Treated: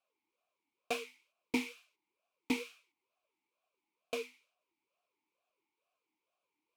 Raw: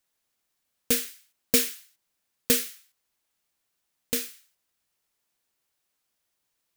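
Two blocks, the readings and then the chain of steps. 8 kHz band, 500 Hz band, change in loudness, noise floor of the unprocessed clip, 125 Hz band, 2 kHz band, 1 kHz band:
-23.5 dB, -8.5 dB, -14.0 dB, -79 dBFS, -15.0 dB, -6.0 dB, +3.0 dB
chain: one-sided clip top -27.5 dBFS; talking filter a-u 2.2 Hz; trim +10.5 dB

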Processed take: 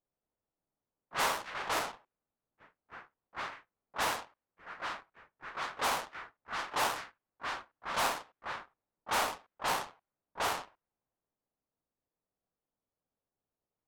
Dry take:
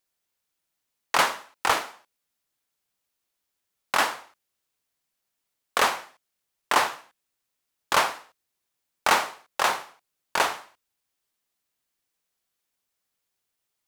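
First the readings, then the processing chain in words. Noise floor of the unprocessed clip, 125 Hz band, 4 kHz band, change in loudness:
-81 dBFS, -3.0 dB, -8.5 dB, -10.5 dB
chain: square wave that keeps the level; band-stop 360 Hz, Q 12; waveshaping leveller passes 2; slow attack 699 ms; ever faster or slower copies 203 ms, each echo +4 st, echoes 3, each echo -6 dB; level-controlled noise filter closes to 710 Hz, open at -29 dBFS

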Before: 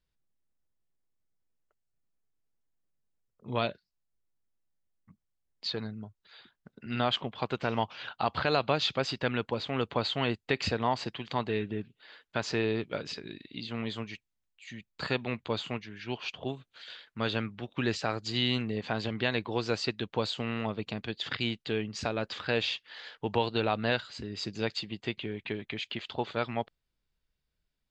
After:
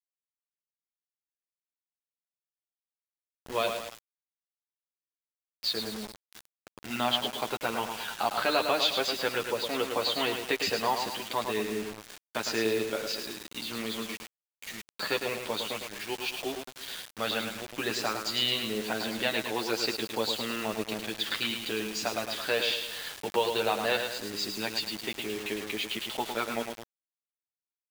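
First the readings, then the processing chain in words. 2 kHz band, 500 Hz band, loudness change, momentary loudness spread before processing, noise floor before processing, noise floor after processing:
+2.5 dB, +1.5 dB, +2.0 dB, 11 LU, -83 dBFS, under -85 dBFS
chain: in parallel at -3 dB: compression 5:1, threshold -42 dBFS, peak gain reduction 18.5 dB; on the sum: treble shelf 7.5 kHz +11.5 dB; on a send: feedback delay 107 ms, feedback 45%, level -6.5 dB; on the sum: flange 0.15 Hz, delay 9.1 ms, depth 1.5 ms, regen -5%; high-pass 270 Hz 12 dB/octave; bit crusher 7-bit; trim +2.5 dB

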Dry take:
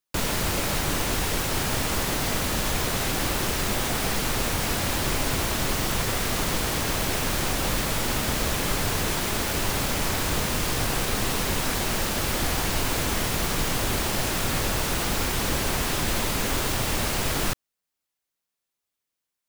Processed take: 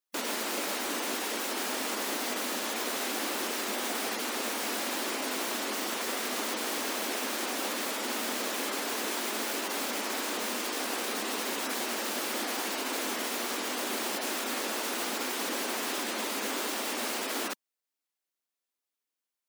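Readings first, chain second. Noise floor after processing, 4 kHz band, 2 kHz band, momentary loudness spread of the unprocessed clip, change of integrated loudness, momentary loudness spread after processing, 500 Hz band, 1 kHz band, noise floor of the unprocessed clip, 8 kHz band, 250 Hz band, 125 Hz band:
under -85 dBFS, -5.5 dB, -5.0 dB, 0 LU, -6.0 dB, 1 LU, -5.0 dB, -5.0 dB, -85 dBFS, -6.0 dB, -7.0 dB, under -25 dB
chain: spectral gate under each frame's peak -30 dB strong; brick-wall FIR high-pass 210 Hz; trim -5 dB

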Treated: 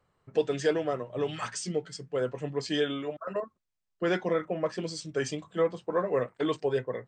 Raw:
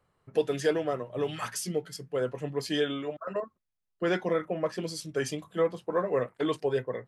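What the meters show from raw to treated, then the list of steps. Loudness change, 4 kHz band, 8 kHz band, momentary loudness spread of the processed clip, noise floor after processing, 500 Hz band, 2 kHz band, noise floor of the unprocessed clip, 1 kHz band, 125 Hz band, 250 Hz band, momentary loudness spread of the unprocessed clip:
0.0 dB, 0.0 dB, -1.0 dB, 7 LU, -80 dBFS, 0.0 dB, 0.0 dB, -80 dBFS, 0.0 dB, 0.0 dB, 0.0 dB, 7 LU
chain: brick-wall FIR low-pass 8.8 kHz

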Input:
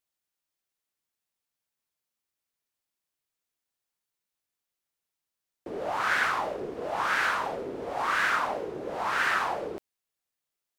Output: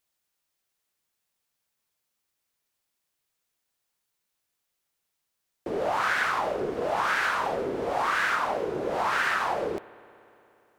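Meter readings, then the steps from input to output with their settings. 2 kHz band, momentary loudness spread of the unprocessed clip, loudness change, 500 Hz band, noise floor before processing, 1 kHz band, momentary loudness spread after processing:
+0.5 dB, 10 LU, +1.5 dB, +4.5 dB, under -85 dBFS, +2.0 dB, 6 LU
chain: peaking EQ 290 Hz -2 dB 0.38 oct; compression 4:1, threshold -30 dBFS, peak gain reduction 7.5 dB; spring tank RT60 3.1 s, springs 58 ms, chirp 70 ms, DRR 19.5 dB; trim +6.5 dB

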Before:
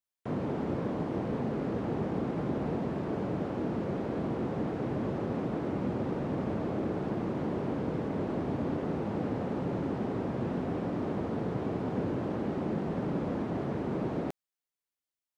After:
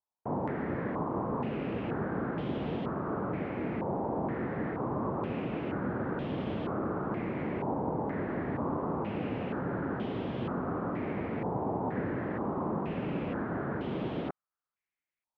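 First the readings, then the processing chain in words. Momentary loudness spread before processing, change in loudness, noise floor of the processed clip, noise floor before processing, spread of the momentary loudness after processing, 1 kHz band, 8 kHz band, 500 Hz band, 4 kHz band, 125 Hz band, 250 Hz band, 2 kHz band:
1 LU, -1.0 dB, under -85 dBFS, under -85 dBFS, 2 LU, +3.0 dB, no reading, -1.0 dB, +1.0 dB, -2.0 dB, -1.5 dB, +4.0 dB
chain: step-sequenced low-pass 2.1 Hz 900–3200 Hz; trim -2 dB

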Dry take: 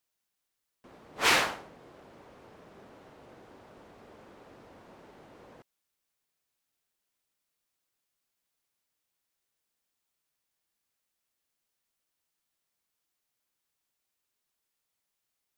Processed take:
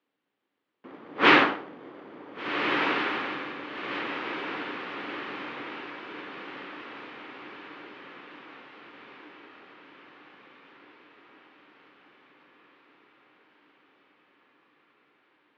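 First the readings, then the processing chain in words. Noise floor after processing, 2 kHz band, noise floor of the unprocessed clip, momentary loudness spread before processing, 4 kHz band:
-81 dBFS, +8.0 dB, -84 dBFS, 14 LU, +3.5 dB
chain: in parallel at -5.5 dB: sample-and-hold 33×; on the sum: cabinet simulation 250–3200 Hz, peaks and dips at 290 Hz +7 dB, 650 Hz -5 dB, 1.2 kHz +4 dB; echo that smears into a reverb 1540 ms, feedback 56%, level -5 dB; trim +6 dB

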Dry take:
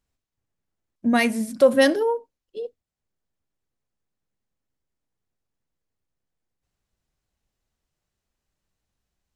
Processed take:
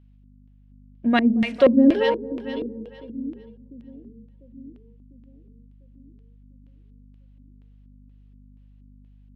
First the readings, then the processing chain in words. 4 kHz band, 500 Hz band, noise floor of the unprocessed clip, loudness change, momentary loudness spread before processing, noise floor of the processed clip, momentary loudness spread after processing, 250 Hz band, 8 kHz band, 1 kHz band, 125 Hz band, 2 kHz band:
-2.5 dB, -1.0 dB, -84 dBFS, -0.5 dB, 19 LU, -52 dBFS, 19 LU, +5.5 dB, under -20 dB, 0.0 dB, no reading, -3.0 dB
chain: hum 50 Hz, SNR 25 dB; two-band feedback delay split 340 Hz, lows 698 ms, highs 226 ms, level -10.5 dB; LFO low-pass square 2.1 Hz 290–3000 Hz

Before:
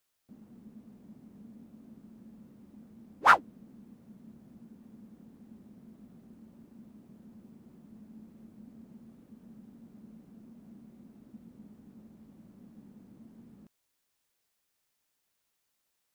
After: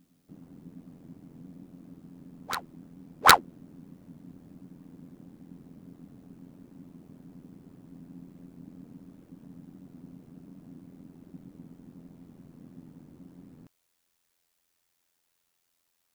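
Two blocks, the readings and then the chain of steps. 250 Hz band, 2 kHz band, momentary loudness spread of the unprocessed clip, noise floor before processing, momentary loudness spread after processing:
+3.5 dB, +4.0 dB, 3 LU, -80 dBFS, 17 LU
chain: ring modulator 43 Hz; integer overflow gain 10.5 dB; reverse echo 762 ms -17.5 dB; trim +6.5 dB

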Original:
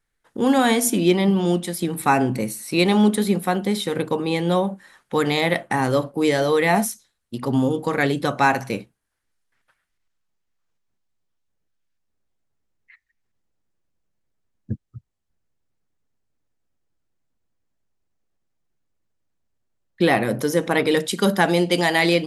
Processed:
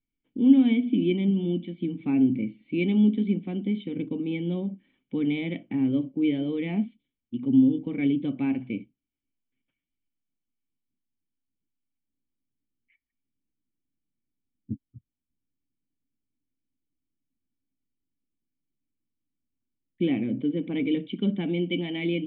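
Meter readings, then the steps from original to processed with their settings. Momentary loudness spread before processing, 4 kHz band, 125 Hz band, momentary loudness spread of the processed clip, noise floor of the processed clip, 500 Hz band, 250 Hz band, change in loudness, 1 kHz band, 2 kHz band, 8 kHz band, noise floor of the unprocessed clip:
10 LU, -13.0 dB, -6.0 dB, 13 LU, under -85 dBFS, -12.5 dB, -1.5 dB, -5.5 dB, -26.0 dB, -16.0 dB, under -40 dB, -76 dBFS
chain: cascade formant filter i; trim +3 dB

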